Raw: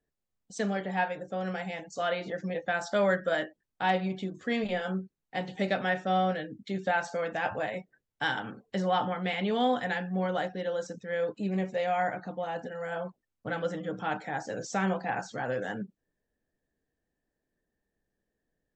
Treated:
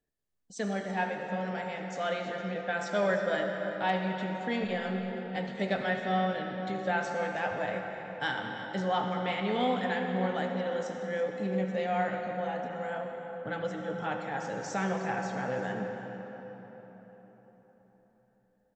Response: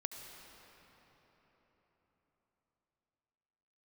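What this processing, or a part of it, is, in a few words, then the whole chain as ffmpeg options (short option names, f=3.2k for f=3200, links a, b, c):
cave: -filter_complex "[0:a]aecho=1:1:332:0.168[a];[1:a]atrim=start_sample=2205[b];[a][b]afir=irnorm=-1:irlink=0"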